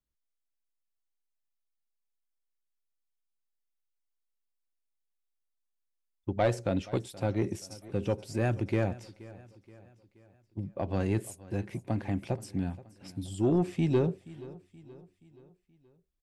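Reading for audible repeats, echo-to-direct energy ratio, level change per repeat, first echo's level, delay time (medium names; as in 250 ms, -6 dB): 3, -18.5 dB, -6.0 dB, -19.5 dB, 476 ms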